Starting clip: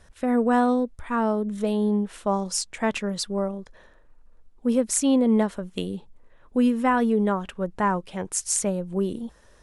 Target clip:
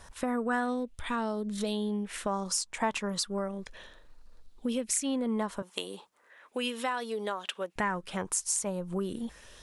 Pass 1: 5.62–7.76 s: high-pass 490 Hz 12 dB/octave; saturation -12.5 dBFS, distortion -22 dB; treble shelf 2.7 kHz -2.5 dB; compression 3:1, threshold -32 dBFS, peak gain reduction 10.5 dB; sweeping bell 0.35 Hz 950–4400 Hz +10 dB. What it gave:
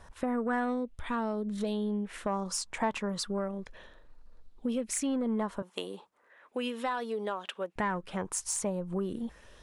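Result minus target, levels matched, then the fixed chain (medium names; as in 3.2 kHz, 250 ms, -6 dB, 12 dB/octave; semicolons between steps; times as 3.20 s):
saturation: distortion +18 dB; 4 kHz band -3.0 dB
5.62–7.76 s: high-pass 490 Hz 12 dB/octave; saturation -2.5 dBFS, distortion -40 dB; treble shelf 2.7 kHz +8 dB; compression 3:1, threshold -32 dBFS, peak gain reduction 14 dB; sweeping bell 0.35 Hz 950–4400 Hz +10 dB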